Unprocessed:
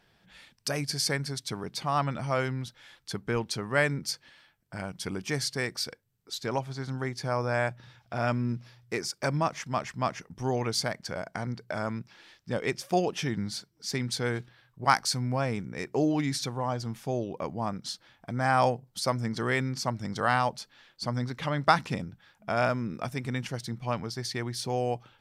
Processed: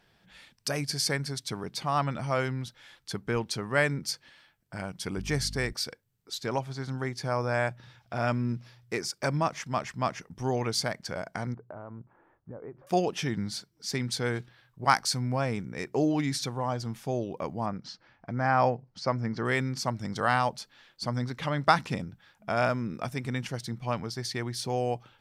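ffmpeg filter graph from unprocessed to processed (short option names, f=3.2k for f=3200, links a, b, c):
-filter_complex "[0:a]asettb=1/sr,asplit=3[a][b][c];[a]atrim=end=5.174[d];[b]atrim=start=5.17:end=5.73,asetpts=PTS-STARTPTS,afade=t=in:d=0.004:c=qsin,afade=t=out:st=0.556:d=0.004:c=qsin,aeval=exprs='val(0)+0.00891*(sin(2*PI*50*n/s)+sin(2*PI*2*50*n/s)/2+sin(2*PI*3*50*n/s)/3+sin(2*PI*4*50*n/s)/4+sin(2*PI*5*50*n/s)/5)':c=same,equalizer=f=87:w=0.45:g=3.5[e];[c]atrim=start=5.726[f];[d][e]acrossfade=d=0.004:c1=hsin:c2=qsin[g];[g][f]acrossfade=d=0.004:c1=qsin:c2=hsin,asettb=1/sr,asplit=3[h][i][j];[h]atrim=end=11.544[k];[i]atrim=start=11.54:end=12.87,asetpts=PTS-STARTPTS,afade=t=in:d=0.004:c=qsin,afade=t=out:st=1.326:d=0.004:c=qsin,lowpass=f=1.2k:w=0.5412,lowpass=f=1.2k:w=1.3066,equalizer=f=200:w=5.9:g=-9.5,acompressor=threshold=-39dB:ratio=5:attack=3.2:release=140:knee=1:detection=peak[l];[j]atrim=start=12.866[m];[k][l]acrossfade=d=0.004:c1=hsin:c2=qsin[n];[n][m]acrossfade=d=0.004:c1=qsin:c2=hsin,asettb=1/sr,asplit=3[o][p][q];[o]atrim=end=17.664[r];[p]atrim=start=17.66:end=19.45,asetpts=PTS-STARTPTS,afade=t=in:d=0.004:c=qsin,afade=t=out:st=1.786:d=0.004:c=qsin,lowpass=f=5k:w=0.5412,lowpass=f=5k:w=1.3066,equalizer=f=3.5k:w=2.4:g=-11[s];[q]atrim=start=19.446[t];[r][s]acrossfade=d=0.004:c1=hsin:c2=qsin[u];[u][t]acrossfade=d=0.004:c1=qsin:c2=hsin"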